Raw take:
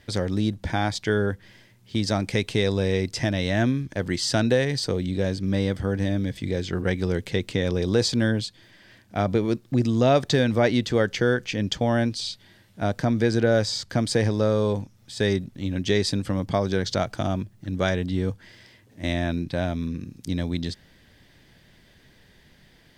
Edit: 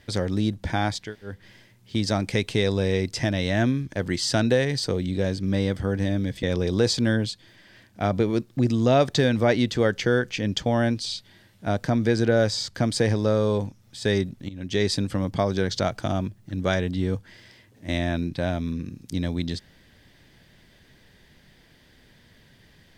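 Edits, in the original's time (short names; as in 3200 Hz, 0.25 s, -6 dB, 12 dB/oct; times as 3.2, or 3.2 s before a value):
1.04–1.33 room tone, crossfade 0.24 s
6.43–7.58 cut
15.64–16.01 fade in, from -16.5 dB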